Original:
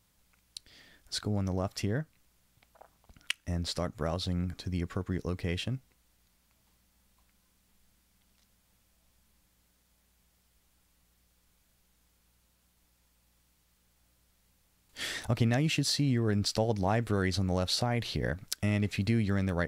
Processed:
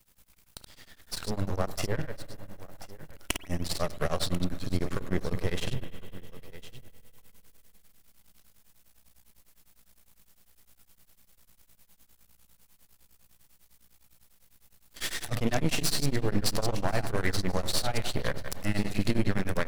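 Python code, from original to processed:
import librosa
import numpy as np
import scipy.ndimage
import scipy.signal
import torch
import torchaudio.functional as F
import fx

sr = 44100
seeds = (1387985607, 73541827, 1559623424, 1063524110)

p1 = fx.reverse_delay(x, sr, ms=101, wet_db=-6.5)
p2 = fx.high_shelf(p1, sr, hz=8900.0, db=10.0)
p3 = fx.rider(p2, sr, range_db=10, speed_s=2.0)
p4 = p2 + (p3 * 10.0 ** (2.0 / 20.0))
p5 = np.maximum(p4, 0.0)
p6 = p5 + fx.echo_single(p5, sr, ms=1042, db=-18.0, dry=0)
p7 = fx.rev_spring(p6, sr, rt60_s=3.6, pass_ms=(44,), chirp_ms=65, drr_db=13.0)
y = p7 * np.abs(np.cos(np.pi * 9.9 * np.arange(len(p7)) / sr))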